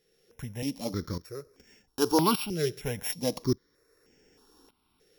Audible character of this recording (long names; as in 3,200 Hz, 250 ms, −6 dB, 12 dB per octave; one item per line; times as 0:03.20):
a buzz of ramps at a fixed pitch in blocks of 8 samples
tremolo saw up 0.85 Hz, depth 80%
notches that jump at a steady rate 3.2 Hz 260–4,000 Hz